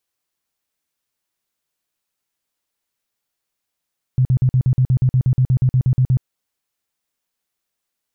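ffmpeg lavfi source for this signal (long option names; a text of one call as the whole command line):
ffmpeg -f lavfi -i "aevalsrc='0.282*sin(2*PI*128*mod(t,0.12))*lt(mod(t,0.12),9/128)':duration=2.04:sample_rate=44100" out.wav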